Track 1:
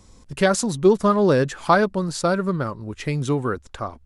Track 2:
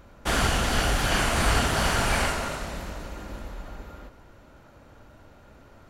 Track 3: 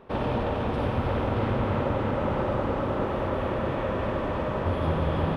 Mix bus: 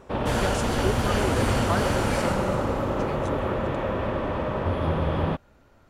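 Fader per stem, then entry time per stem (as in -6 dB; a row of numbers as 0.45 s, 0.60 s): -12.5 dB, -6.0 dB, +1.0 dB; 0.00 s, 0.00 s, 0.00 s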